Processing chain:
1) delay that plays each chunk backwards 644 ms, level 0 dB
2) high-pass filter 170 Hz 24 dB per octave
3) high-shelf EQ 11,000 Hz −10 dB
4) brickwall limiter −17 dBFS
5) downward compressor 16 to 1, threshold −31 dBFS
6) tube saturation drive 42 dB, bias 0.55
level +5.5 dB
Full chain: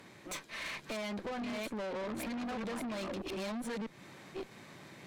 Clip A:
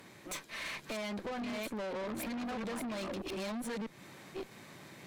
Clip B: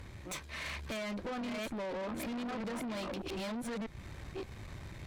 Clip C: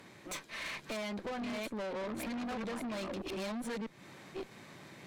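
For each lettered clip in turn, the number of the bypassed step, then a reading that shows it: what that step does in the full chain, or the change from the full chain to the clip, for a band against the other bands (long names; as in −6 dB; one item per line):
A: 3, 8 kHz band +1.5 dB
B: 2, 125 Hz band +4.5 dB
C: 4, average gain reduction 2.0 dB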